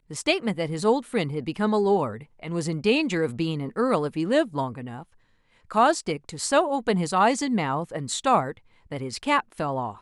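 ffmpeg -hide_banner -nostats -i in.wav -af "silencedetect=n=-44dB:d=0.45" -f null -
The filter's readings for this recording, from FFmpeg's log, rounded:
silence_start: 5.03
silence_end: 5.71 | silence_duration: 0.68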